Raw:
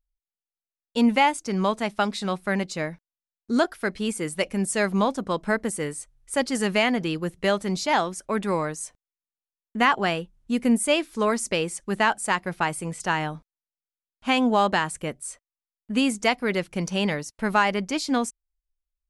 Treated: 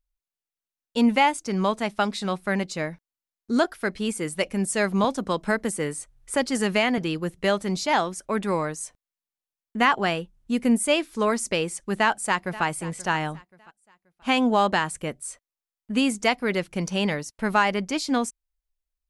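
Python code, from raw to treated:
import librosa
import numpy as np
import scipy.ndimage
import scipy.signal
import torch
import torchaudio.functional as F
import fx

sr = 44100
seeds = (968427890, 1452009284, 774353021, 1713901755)

y = fx.band_squash(x, sr, depth_pct=40, at=(5.04, 6.98))
y = fx.echo_throw(y, sr, start_s=11.99, length_s=0.65, ms=530, feedback_pct=35, wet_db=-17.0)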